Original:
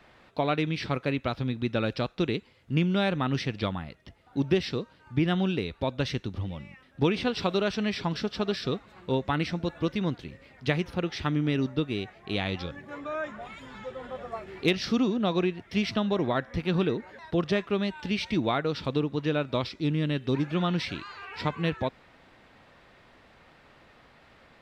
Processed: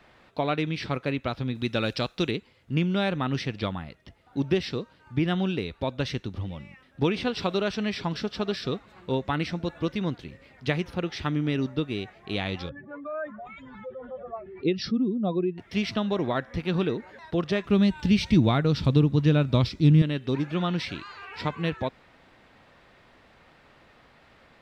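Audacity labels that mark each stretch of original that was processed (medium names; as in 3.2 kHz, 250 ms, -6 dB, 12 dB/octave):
1.550000	2.310000	treble shelf 3.3 kHz +11 dB
12.690000	15.580000	spectral contrast enhancement exponent 1.8
17.640000	20.020000	tone controls bass +14 dB, treble +6 dB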